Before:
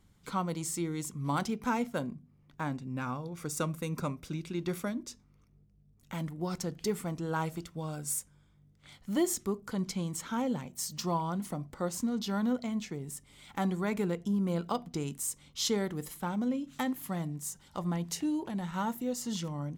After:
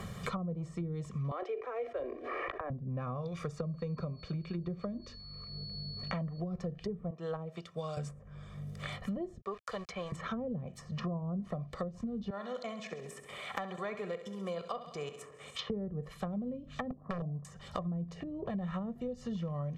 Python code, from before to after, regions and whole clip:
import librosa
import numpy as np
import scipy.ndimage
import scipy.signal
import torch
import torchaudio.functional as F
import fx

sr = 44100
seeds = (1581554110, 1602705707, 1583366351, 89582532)

y = fx.chain(x, sr, fx.steep_highpass(hz=300.0, slope=96),
    fx.peak_eq(hz=2000.0, db=13.0, octaves=1.6),
    fx.env_flatten(amount_pct=70), at=(1.31, 2.7))
y = fx.dmg_tone(y, sr, hz=4400.0, level_db=-42.0, at=(3.56, 6.39), fade=0.02)
y = fx.air_absorb(y, sr, metres=75.0, at=(3.56, 6.39), fade=0.02)
y = fx.chain(y, sr, fx.highpass(hz=230.0, slope=12),
    fx.upward_expand(threshold_db=-45.0, expansion=1.5), at=(7.1, 7.97))
y = fx.chain(y, sr, fx.highpass(hz=530.0, slope=12),
    fx.sample_gate(floor_db=-52.0), at=(9.41, 10.12))
y = fx.chain(y, sr, fx.level_steps(step_db=12),
    fx.highpass(hz=410.0, slope=12),
    fx.echo_feedback(ms=66, feedback_pct=59, wet_db=-11.5), at=(12.3, 15.7))
y = fx.chain(y, sr, fx.cheby2_lowpass(hz=2600.0, order=4, stop_db=50),
    fx.overflow_wrap(gain_db=27.0), at=(16.9, 17.45))
y = fx.env_lowpass_down(y, sr, base_hz=380.0, full_db=-29.5)
y = y + 0.82 * np.pad(y, (int(1.7 * sr / 1000.0), 0))[:len(y)]
y = fx.band_squash(y, sr, depth_pct=100)
y = y * librosa.db_to_amplitude(-1.5)